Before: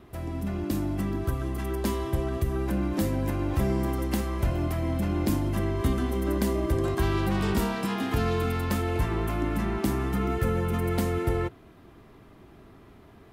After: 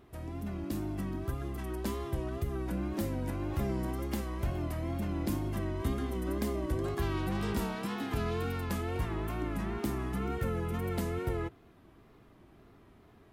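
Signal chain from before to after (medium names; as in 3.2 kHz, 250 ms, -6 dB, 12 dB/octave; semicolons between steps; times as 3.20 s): wow and flutter 78 cents; trim -7 dB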